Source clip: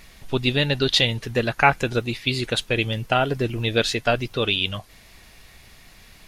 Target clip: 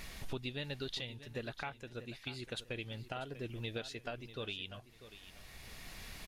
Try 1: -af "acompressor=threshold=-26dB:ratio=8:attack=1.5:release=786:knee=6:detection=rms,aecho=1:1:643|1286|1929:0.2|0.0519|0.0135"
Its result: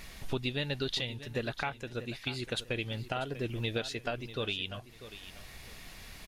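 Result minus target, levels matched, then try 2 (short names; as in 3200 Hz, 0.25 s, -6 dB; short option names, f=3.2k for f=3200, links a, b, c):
compressor: peak gain reduction -7.5 dB
-af "acompressor=threshold=-34.5dB:ratio=8:attack=1.5:release=786:knee=6:detection=rms,aecho=1:1:643|1286|1929:0.2|0.0519|0.0135"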